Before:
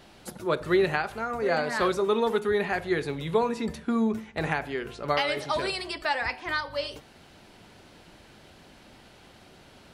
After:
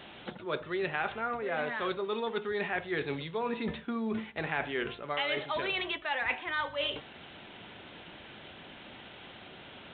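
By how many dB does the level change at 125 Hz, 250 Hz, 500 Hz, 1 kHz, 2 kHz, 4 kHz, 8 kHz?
−7.5 dB, −7.5 dB, −7.5 dB, −5.5 dB, −3.0 dB, −2.0 dB, below −30 dB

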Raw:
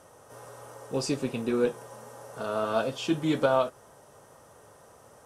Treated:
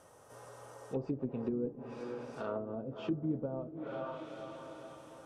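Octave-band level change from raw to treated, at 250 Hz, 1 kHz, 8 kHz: −6.5 dB, −13.0 dB, below −15 dB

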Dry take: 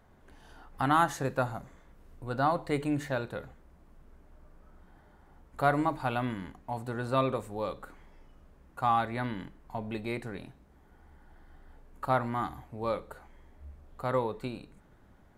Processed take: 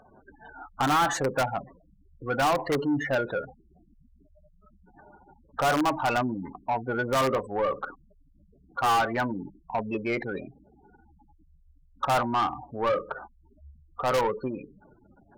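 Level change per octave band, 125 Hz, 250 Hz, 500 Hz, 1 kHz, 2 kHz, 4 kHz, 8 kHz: −0.5, +3.5, +5.0, +4.5, +6.5, +9.5, +10.5 decibels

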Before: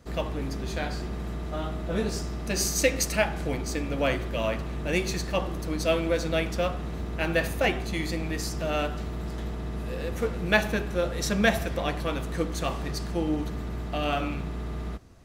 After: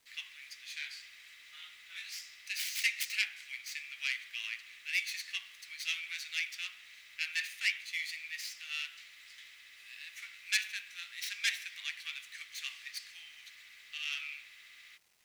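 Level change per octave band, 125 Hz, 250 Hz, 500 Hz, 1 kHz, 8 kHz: below −40 dB, below −40 dB, below −40 dB, −28.5 dB, −9.0 dB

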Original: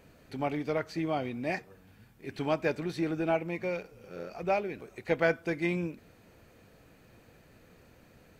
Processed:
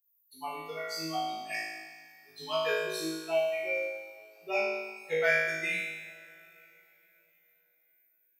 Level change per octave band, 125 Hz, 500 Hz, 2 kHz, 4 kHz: −13.5, −0.5, +5.5, +8.5 decibels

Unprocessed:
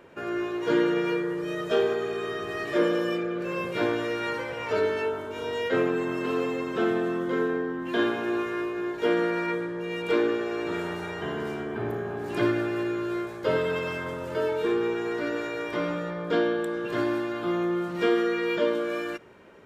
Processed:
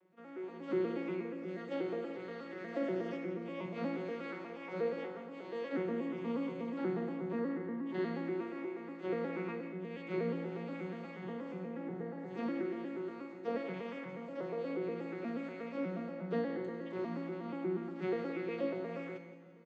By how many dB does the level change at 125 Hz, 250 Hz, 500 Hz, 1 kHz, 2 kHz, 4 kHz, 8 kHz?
−8.0 dB, −10.0 dB, −12.0 dB, −13.5 dB, −16.0 dB, −19.5 dB, can't be measured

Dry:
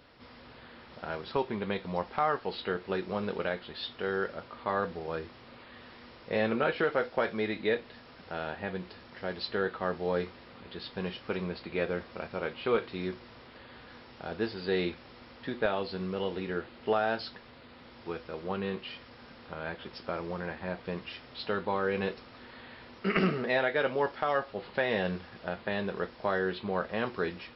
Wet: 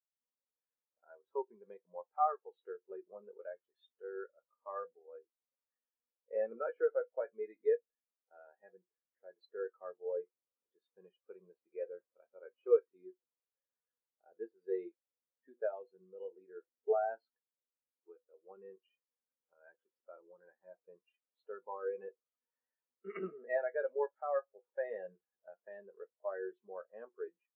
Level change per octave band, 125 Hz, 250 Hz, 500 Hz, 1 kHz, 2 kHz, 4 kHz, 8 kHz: below −25 dB, −20.0 dB, −6.0 dB, −8.5 dB, −18.0 dB, below −35 dB, can't be measured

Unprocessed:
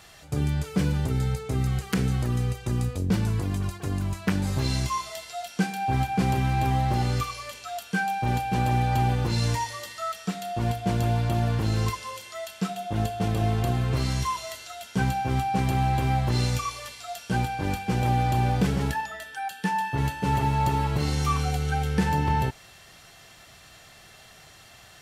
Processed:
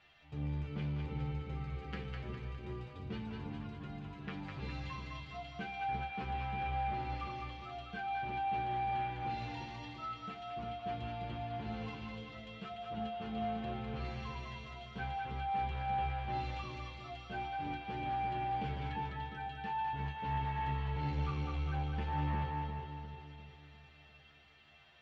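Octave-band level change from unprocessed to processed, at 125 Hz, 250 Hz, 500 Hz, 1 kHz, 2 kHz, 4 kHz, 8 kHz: −16.0 dB, −15.5 dB, −12.5 dB, −9.0 dB, −11.5 dB, −14.0 dB, below −30 dB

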